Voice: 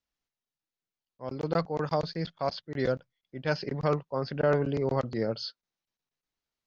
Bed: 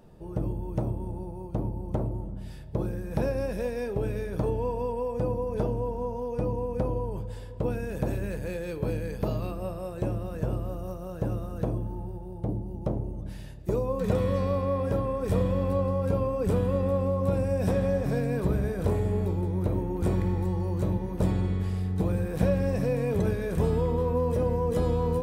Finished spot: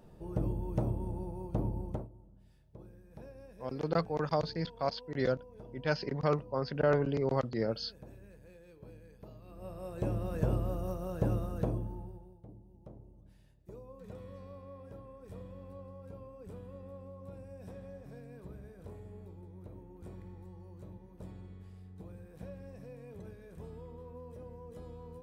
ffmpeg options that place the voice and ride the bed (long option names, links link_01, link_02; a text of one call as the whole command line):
ffmpeg -i stem1.wav -i stem2.wav -filter_complex "[0:a]adelay=2400,volume=-2.5dB[link_01];[1:a]volume=18.5dB,afade=type=out:start_time=1.81:duration=0.27:silence=0.105925,afade=type=in:start_time=9.45:duration=0.92:silence=0.0841395,afade=type=out:start_time=11.36:duration=1.05:silence=0.0891251[link_02];[link_01][link_02]amix=inputs=2:normalize=0" out.wav